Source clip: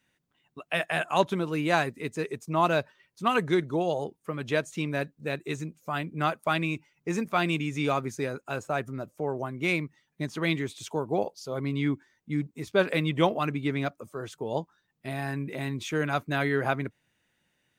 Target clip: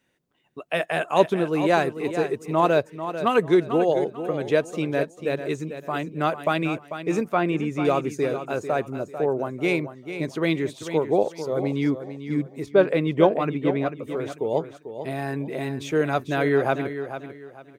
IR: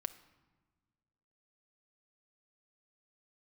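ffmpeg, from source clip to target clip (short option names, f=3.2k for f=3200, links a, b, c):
-filter_complex "[0:a]equalizer=f=450:t=o:w=1.5:g=8.5,asplit=2[a][b];[b]aecho=0:1:444|888|1332:0.299|0.0836|0.0234[c];[a][c]amix=inputs=2:normalize=0,asettb=1/sr,asplit=3[d][e][f];[d]atrim=end=7.234[g];[e]atrim=start=7.23:end=7.85,asetpts=PTS-STARTPTS,afade=t=in:d=0.004:c=qsin,afade=t=out:st=0.616:d=0.004:c=qsin,acrossover=split=2500[h][i];[i]acompressor=threshold=-47dB:ratio=4:attack=1:release=60[j];[h][j]amix=inputs=2:normalize=0[k];[f]atrim=start=7.846[l];[g][k]acrossfade=d=0.004:c1=hsin:c2=qsin[m];[m][l]acrossfade=d=0.004:c1=qsin:c2=hsin,asettb=1/sr,asplit=3[n][o][p];[n]atrim=end=12.664[q];[o]atrim=start=12.66:end=14.03,asetpts=PTS-STARTPTS,afade=t=in:d=0.004:c=qsin,afade=t=out:st=1.366:d=0.004:c=qsin,highshelf=f=4.3k:g=-11.5[r];[p]atrim=start=14.026[s];[q][r]acrossfade=d=0.004:c1=hsin:c2=qsin[t];[t][s]acrossfade=d=0.004:c1=qsin:c2=hsin"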